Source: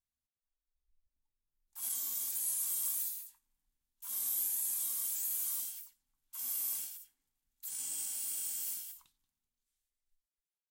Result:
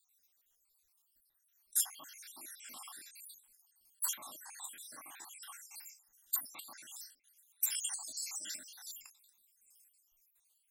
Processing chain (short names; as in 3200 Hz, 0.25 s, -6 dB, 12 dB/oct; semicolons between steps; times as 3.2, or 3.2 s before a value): random spectral dropouts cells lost 72%; RIAA curve recording; treble ducked by the level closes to 1300 Hz, closed at -25 dBFS; gain +14 dB